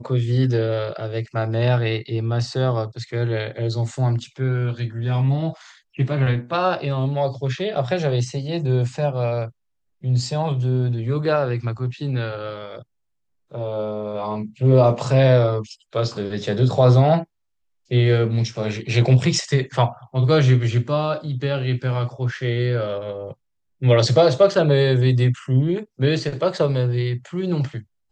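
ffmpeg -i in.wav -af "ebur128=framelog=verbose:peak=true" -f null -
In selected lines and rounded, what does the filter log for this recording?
Integrated loudness:
  I:         -20.9 LUFS
  Threshold: -31.2 LUFS
Loudness range:
  LRA:         5.4 LU
  Threshold: -41.2 LUFS
  LRA low:   -23.9 LUFS
  LRA high:  -18.5 LUFS
True peak:
  Peak:       -3.6 dBFS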